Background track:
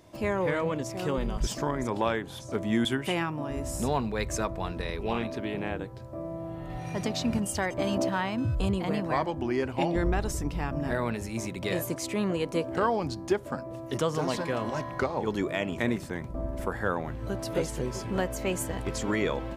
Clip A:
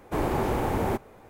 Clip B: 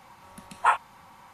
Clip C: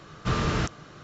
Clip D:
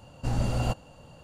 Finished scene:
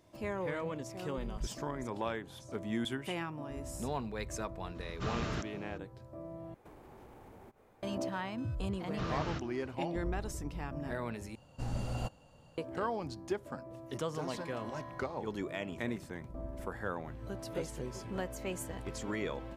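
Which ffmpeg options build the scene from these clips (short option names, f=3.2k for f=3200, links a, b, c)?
-filter_complex "[3:a]asplit=2[a][b];[0:a]volume=-9dB[c];[1:a]acompressor=threshold=-39dB:ratio=6:attack=3.2:release=140:knee=1:detection=peak[d];[b]lowpass=f=6.4k:w=0.5412,lowpass=f=6.4k:w=1.3066[e];[c]asplit=3[f][g][h];[f]atrim=end=6.544[i];[d]atrim=end=1.29,asetpts=PTS-STARTPTS,volume=-13dB[j];[g]atrim=start=7.826:end=11.354[k];[4:a]atrim=end=1.23,asetpts=PTS-STARTPTS,volume=-9.5dB[l];[h]atrim=start=12.576[m];[a]atrim=end=1.03,asetpts=PTS-STARTPTS,volume=-11dB,afade=t=in:d=0.004:c=hsin,afade=t=out:st=1.026:d=0.004:c=hsin,adelay=4750[n];[e]atrim=end=1.03,asetpts=PTS-STARTPTS,volume=-12.5dB,afade=t=in:d=0.004:c=hsin,afade=t=out:st=1.026:d=0.004:c=hsin,adelay=8720[o];[i][j]acrossfade=d=0.004:c1=hsin:c2=hsin[p];[p][k]acrossfade=d=0.004:c1=hsin:c2=hsin[q];[q][l]acrossfade=d=0.004:c1=hsin:c2=hsin[r];[r][m]acrossfade=d=0.004:c1=hsin:c2=hsin[s];[s][n][o]amix=inputs=3:normalize=0"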